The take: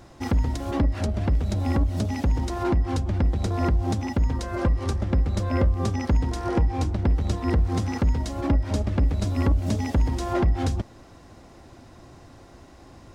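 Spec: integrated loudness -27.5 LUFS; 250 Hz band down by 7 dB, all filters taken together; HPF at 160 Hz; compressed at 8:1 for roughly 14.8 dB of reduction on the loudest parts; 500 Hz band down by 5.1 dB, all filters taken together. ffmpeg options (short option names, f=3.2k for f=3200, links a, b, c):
-af "highpass=160,equalizer=f=250:t=o:g=-6.5,equalizer=f=500:t=o:g=-4.5,acompressor=threshold=-41dB:ratio=8,volume=18dB"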